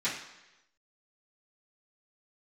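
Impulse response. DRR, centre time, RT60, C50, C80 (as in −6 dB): −12.5 dB, 38 ms, 1.0 s, 5.0 dB, 8.0 dB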